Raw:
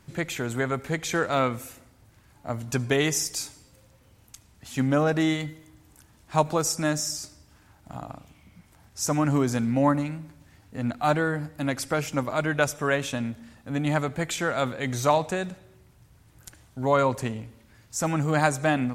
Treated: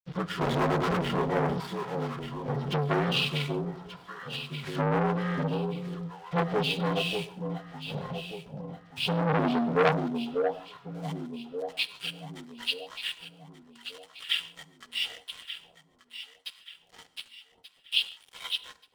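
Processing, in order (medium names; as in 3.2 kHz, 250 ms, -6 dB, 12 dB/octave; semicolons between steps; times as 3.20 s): frequency axis rescaled in octaves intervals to 76%; 3.14–4.70 s: peaking EQ 1 kHz +12.5 dB 1.6 oct; in parallel at +1 dB: compression 4:1, threshold -42 dBFS, peak gain reduction 20 dB; on the sum: high-pass sweep 120 Hz -> 2.8 kHz, 9.22–10.65 s; 0.41–1.01 s: overdrive pedal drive 38 dB, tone 1.2 kHz, clips at -13 dBFS; comb of notches 300 Hz; crossover distortion -40.5 dBFS; echo whose repeats swap between lows and highs 591 ms, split 820 Hz, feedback 62%, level -7 dB; on a send at -16 dB: reverberation, pre-delay 3 ms; on the sum: transformer saturation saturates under 1.7 kHz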